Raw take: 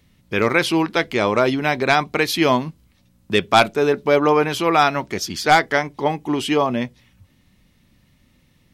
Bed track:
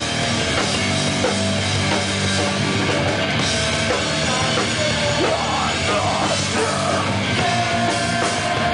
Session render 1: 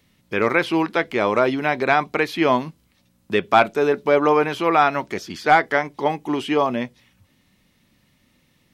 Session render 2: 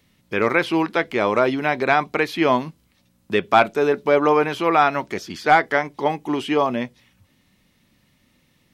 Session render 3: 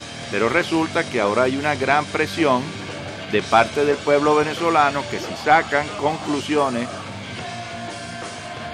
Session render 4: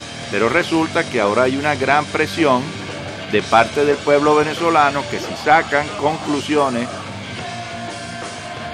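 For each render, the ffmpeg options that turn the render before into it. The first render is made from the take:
-filter_complex "[0:a]acrossover=split=2700[s0][s1];[s1]acompressor=threshold=0.0126:ratio=4:attack=1:release=60[s2];[s0][s2]amix=inputs=2:normalize=0,lowshelf=f=130:g=-11"
-af anull
-filter_complex "[1:a]volume=0.251[s0];[0:a][s0]amix=inputs=2:normalize=0"
-af "volume=1.41,alimiter=limit=0.891:level=0:latency=1"

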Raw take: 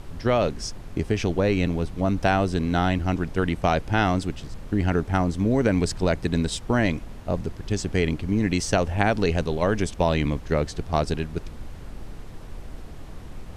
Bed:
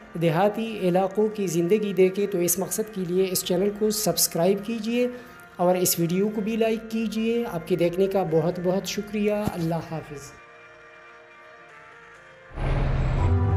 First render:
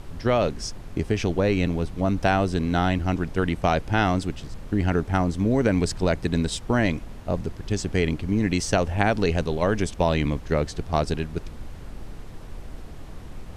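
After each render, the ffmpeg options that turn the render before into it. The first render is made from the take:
-af anull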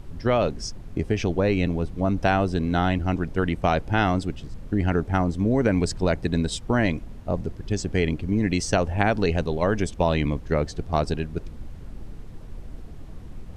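-af "afftdn=nr=7:nf=-40"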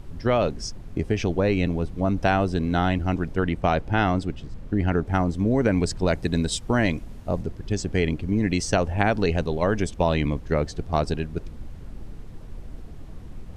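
-filter_complex "[0:a]asettb=1/sr,asplit=3[s0][s1][s2];[s0]atrim=end=3.364[s3];[s1]atrim=start=3.36:end=5.07,asetpts=PTS-STARTPTS,afade=t=in:d=0.004:c=qsin,afade=t=out:st=1.706:d=0.004:c=qsin,highshelf=f=5700:g=-6.5[s4];[s2]atrim=start=5.066[s5];[s3][s4]acrossfade=d=0.004:c1=hsin:c2=qsin[s6];[s6][s5]acrossfade=d=0.004:c1=qsin:c2=hsin,asettb=1/sr,asplit=3[s7][s8][s9];[s7]atrim=end=6.084[s10];[s8]atrim=start=6.08:end=7.43,asetpts=PTS-STARTPTS,afade=t=in:d=0.004:c=qsin,afade=t=out:st=1.346:d=0.004:c=qsin,highshelf=f=4400:g=5.5[s11];[s9]atrim=start=7.426[s12];[s10][s11]acrossfade=d=0.004:c1=hsin:c2=qsin[s13];[s13][s12]acrossfade=d=0.004:c1=qsin:c2=hsin"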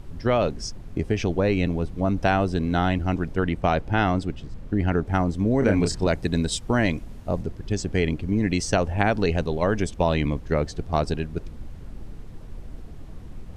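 -filter_complex "[0:a]asettb=1/sr,asplit=3[s0][s1][s2];[s0]atrim=end=5.594[s3];[s1]atrim=start=5.59:end=6.07,asetpts=PTS-STARTPTS,afade=t=in:d=0.004:c=qsin,afade=t=out:st=0.476:d=0.004:c=qsin,asplit=2[s4][s5];[s5]adelay=30,volume=0.596[s6];[s4][s6]amix=inputs=2:normalize=0,atrim=end_sample=21168[s7];[s2]atrim=start=6.066[s8];[s3][s7]acrossfade=d=0.004:c1=hsin:c2=qsin[s9];[s9][s8]acrossfade=d=0.004:c1=qsin:c2=hsin"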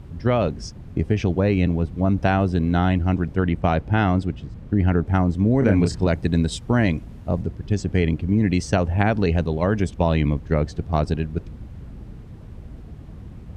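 -af "highpass=55,bass=f=250:g=6,treble=f=4000:g=-5"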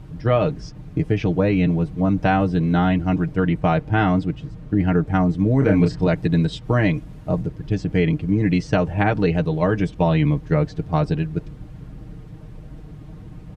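-filter_complex "[0:a]acrossover=split=4600[s0][s1];[s1]acompressor=threshold=0.00158:ratio=4:attack=1:release=60[s2];[s0][s2]amix=inputs=2:normalize=0,aecho=1:1:6.5:0.68"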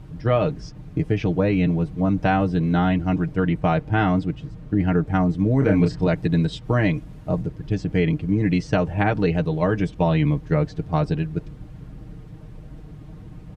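-af "volume=0.841"

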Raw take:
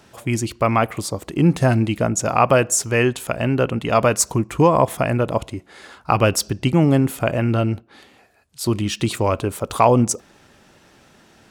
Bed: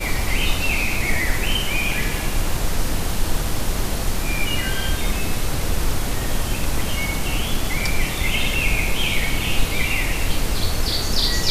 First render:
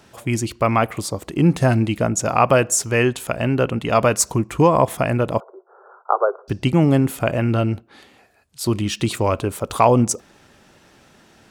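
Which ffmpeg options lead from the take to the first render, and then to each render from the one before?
-filter_complex "[0:a]asettb=1/sr,asplit=3[s0][s1][s2];[s0]atrim=end=5.404[s3];[s1]atrim=start=5.4:end=6.48,asetpts=PTS-STARTPTS,afade=t=in:d=0.004:c=qsin,afade=t=out:st=1.076:d=0.004:c=qsin,asuperpass=centerf=740:order=20:qfactor=0.69[s4];[s2]atrim=start=6.476[s5];[s3][s4]acrossfade=d=0.004:c1=hsin:c2=qsin[s6];[s6][s5]acrossfade=d=0.004:c1=qsin:c2=hsin"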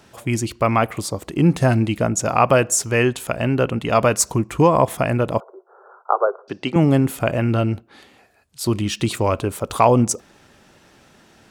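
-filter_complex "[0:a]asettb=1/sr,asplit=3[s0][s1][s2];[s0]atrim=end=6.264[s3];[s1]atrim=start=6.26:end=6.76,asetpts=PTS-STARTPTS,afade=t=in:d=0.004:c=qsin,afade=t=out:st=0.496:d=0.004:c=qsin,highpass=290,lowpass=5100[s4];[s2]atrim=start=6.756[s5];[s3][s4]acrossfade=d=0.004:c1=hsin:c2=qsin[s6];[s6][s5]acrossfade=d=0.004:c1=qsin:c2=hsin"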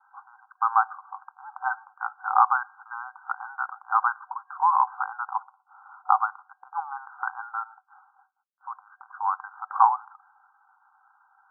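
-af "afftfilt=real='re*between(b*sr/4096,750,1600)':imag='im*between(b*sr/4096,750,1600)':win_size=4096:overlap=0.75,agate=range=0.0224:threshold=0.00158:ratio=3:detection=peak"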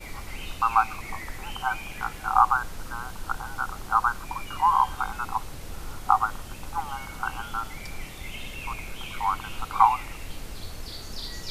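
-filter_complex "[1:a]volume=0.15[s0];[0:a][s0]amix=inputs=2:normalize=0"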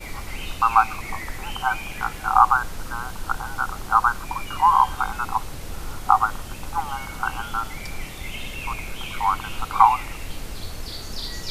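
-af "volume=1.68,alimiter=limit=0.891:level=0:latency=1"

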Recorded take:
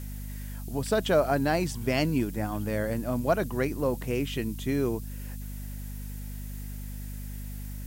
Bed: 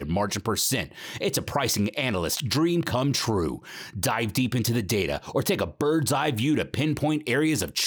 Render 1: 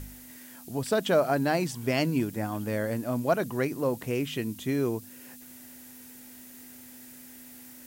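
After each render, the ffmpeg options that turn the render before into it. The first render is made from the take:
-af "bandreject=f=50:t=h:w=4,bandreject=f=100:t=h:w=4,bandreject=f=150:t=h:w=4,bandreject=f=200:t=h:w=4"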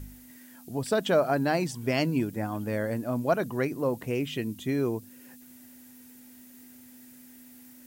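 -af "afftdn=nr=6:nf=-48"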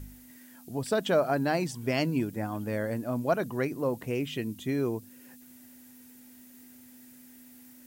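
-af "volume=0.841"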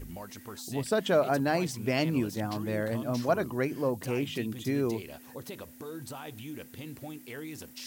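-filter_complex "[1:a]volume=0.126[s0];[0:a][s0]amix=inputs=2:normalize=0"

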